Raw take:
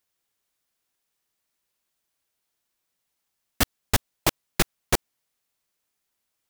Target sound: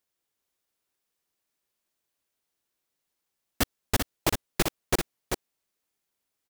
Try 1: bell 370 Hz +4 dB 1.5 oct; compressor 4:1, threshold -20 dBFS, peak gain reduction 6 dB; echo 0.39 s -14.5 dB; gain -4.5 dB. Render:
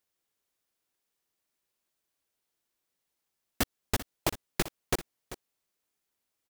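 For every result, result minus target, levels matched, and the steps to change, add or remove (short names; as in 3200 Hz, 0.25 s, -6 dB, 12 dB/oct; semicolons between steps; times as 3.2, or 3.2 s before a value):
echo-to-direct -9 dB; compressor: peak gain reduction +6 dB
change: echo 0.39 s -5.5 dB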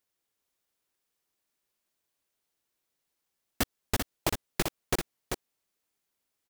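compressor: peak gain reduction +6 dB
remove: compressor 4:1, threshold -20 dBFS, peak gain reduction 6 dB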